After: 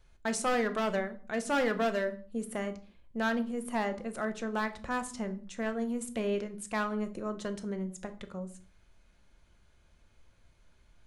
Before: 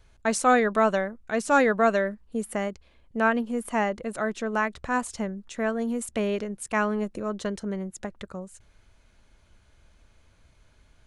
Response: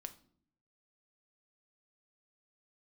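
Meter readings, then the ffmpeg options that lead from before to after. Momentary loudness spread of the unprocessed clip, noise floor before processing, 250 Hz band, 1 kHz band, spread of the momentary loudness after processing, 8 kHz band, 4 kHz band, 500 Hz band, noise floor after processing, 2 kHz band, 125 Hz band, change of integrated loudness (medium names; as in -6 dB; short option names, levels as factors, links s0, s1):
13 LU, -60 dBFS, -5.5 dB, -9.0 dB, 10 LU, -5.5 dB, -2.0 dB, -7.0 dB, -64 dBFS, -7.5 dB, -5.0 dB, -7.0 dB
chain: -filter_complex "[0:a]acontrast=84,asoftclip=type=hard:threshold=0.251[s0];[1:a]atrim=start_sample=2205,afade=t=out:st=0.29:d=0.01,atrim=end_sample=13230[s1];[s0][s1]afir=irnorm=-1:irlink=0,volume=0.398"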